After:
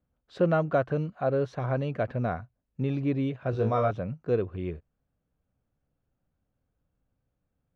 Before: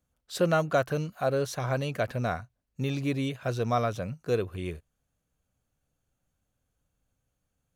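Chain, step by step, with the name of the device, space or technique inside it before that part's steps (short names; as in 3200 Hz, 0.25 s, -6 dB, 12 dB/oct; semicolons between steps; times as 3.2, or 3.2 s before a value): phone in a pocket (LPF 3400 Hz 12 dB/oct; bell 260 Hz +2.5 dB 2.1 oct; high shelf 2100 Hz -10 dB); 3.51–3.91 flutter echo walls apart 3.2 m, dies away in 0.3 s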